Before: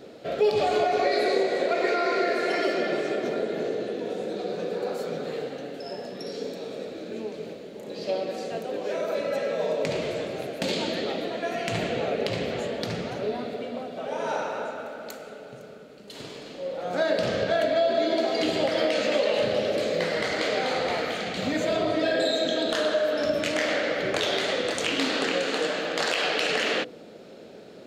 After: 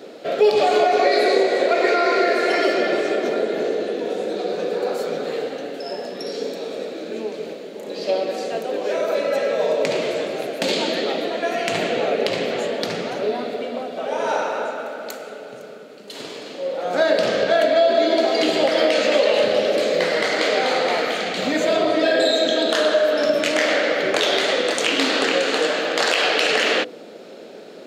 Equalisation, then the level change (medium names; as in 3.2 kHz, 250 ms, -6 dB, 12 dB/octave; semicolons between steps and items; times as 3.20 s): high-pass 250 Hz 12 dB/octave; +7.0 dB